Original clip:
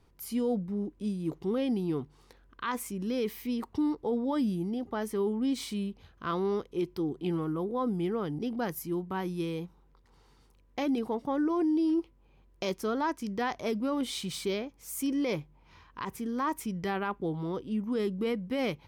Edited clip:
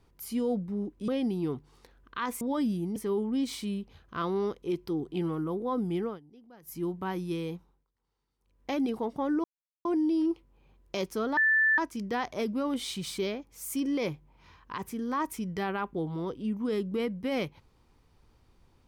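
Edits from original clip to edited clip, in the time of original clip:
1.08–1.54 cut
2.87–4.19 cut
4.74–5.05 cut
8.13–8.87 dip -21.5 dB, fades 0.16 s
9.63–10.79 dip -20.5 dB, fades 0.32 s
11.53 insert silence 0.41 s
13.05 add tone 1760 Hz -20.5 dBFS 0.41 s

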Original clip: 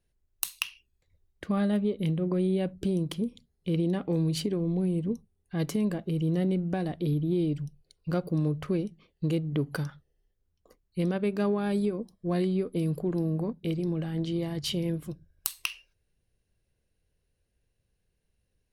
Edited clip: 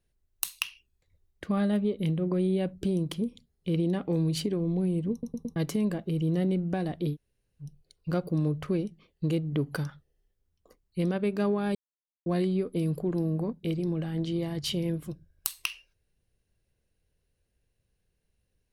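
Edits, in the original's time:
5.12 stutter in place 0.11 s, 4 plays
7.12–7.64 room tone, crossfade 0.10 s
11.75–12.26 mute

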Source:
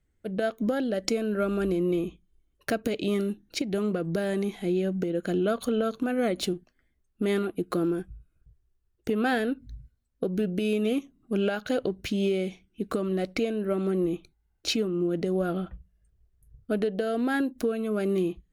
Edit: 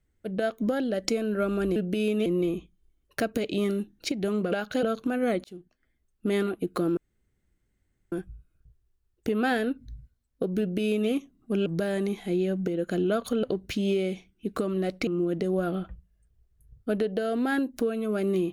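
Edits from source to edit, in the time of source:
4.02–5.79 swap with 11.47–11.78
6.4–7.23 fade in equal-power
7.93 insert room tone 1.15 s
10.41–10.91 copy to 1.76
13.42–14.89 cut

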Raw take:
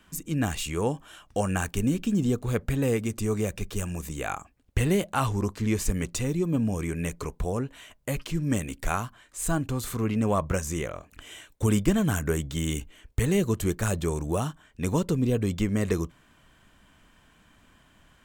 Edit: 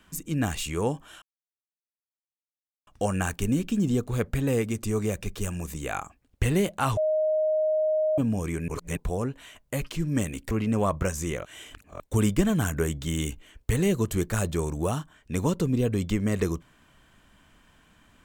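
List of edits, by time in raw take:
1.22 insert silence 1.65 s
5.32–6.53 bleep 622 Hz -21 dBFS
7.03–7.32 reverse
8.86–10 cut
10.94–11.49 reverse

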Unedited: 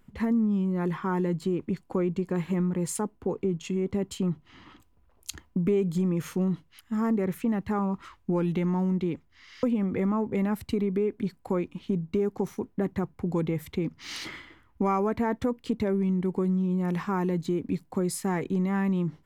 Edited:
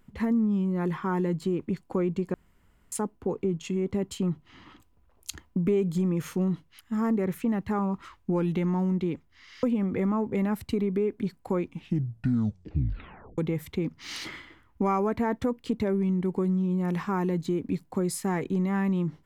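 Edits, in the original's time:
2.34–2.92 room tone
11.64 tape stop 1.74 s

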